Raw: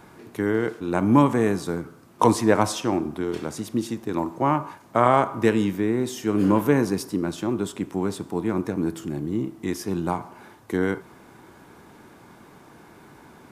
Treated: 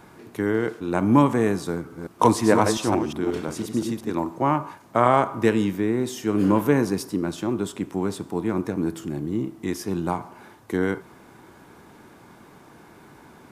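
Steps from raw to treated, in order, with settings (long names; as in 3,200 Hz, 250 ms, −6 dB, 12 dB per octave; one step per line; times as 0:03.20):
0:01.72–0:04.12: delay that plays each chunk backwards 176 ms, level −5.5 dB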